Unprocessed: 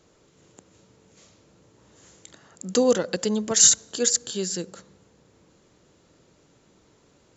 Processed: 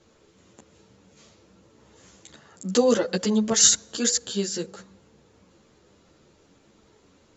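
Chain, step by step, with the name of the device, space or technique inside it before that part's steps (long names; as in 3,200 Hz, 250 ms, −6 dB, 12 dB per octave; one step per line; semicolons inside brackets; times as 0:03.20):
string-machine ensemble chorus (string-ensemble chorus; low-pass filter 6,800 Hz 12 dB per octave)
level +4.5 dB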